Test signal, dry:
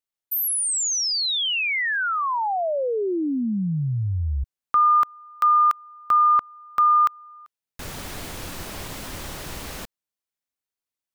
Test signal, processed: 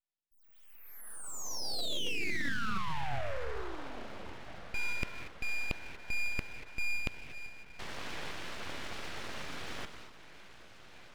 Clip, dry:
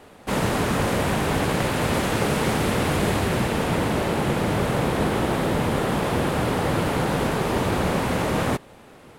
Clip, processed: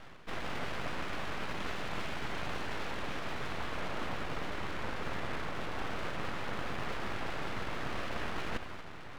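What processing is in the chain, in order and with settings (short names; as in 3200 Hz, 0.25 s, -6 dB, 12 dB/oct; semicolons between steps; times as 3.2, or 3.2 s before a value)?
reverse; compressor 12:1, threshold -30 dBFS; reverse; BPF 250–2600 Hz; on a send: diffused feedback echo 1.349 s, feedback 47%, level -14 dB; on the sum: non-linear reverb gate 0.26 s rising, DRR 8.5 dB; full-wave rectifier; bell 890 Hz -2.5 dB 0.77 oct; gain +1 dB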